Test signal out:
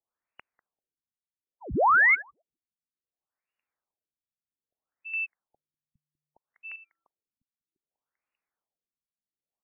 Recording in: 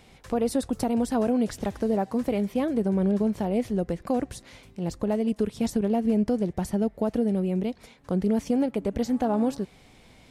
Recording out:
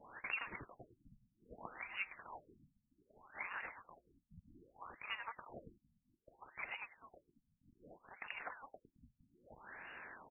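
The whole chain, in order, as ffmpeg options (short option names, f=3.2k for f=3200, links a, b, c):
-filter_complex "[0:a]bandreject=f=50:t=h:w=6,bandreject=f=100:t=h:w=6,bandreject=f=150:t=h:w=6,bandreject=f=200:t=h:w=6,acompressor=threshold=-26dB:ratio=6,asplit=2[a][b];[b]adelay=196,lowpass=f=1.5k:p=1,volume=-12.5dB,asplit=2[c][d];[d]adelay=196,lowpass=f=1.5k:p=1,volume=0.42,asplit=2[e][f];[f]adelay=196,lowpass=f=1.5k:p=1,volume=0.42,asplit=2[g][h];[h]adelay=196,lowpass=f=1.5k:p=1,volume=0.42[i];[a][c][e][g][i]amix=inputs=5:normalize=0,lowpass=f=3.3k:t=q:w=0.5098,lowpass=f=3.3k:t=q:w=0.6013,lowpass=f=3.3k:t=q:w=0.9,lowpass=f=3.3k:t=q:w=2.563,afreqshift=-3900,afftfilt=real='re*lt(b*sr/1024,250*pow(2900/250,0.5+0.5*sin(2*PI*0.63*pts/sr)))':imag='im*lt(b*sr/1024,250*pow(2900/250,0.5+0.5*sin(2*PI*0.63*pts/sr)))':win_size=1024:overlap=0.75,volume=9dB"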